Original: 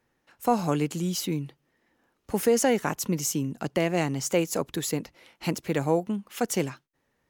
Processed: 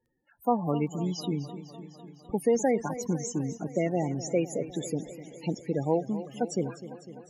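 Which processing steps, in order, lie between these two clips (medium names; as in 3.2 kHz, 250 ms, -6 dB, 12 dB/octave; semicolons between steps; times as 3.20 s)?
loudest bins only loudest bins 16; crackle 13 per s -53 dBFS; modulated delay 252 ms, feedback 69%, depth 76 cents, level -14 dB; trim -2 dB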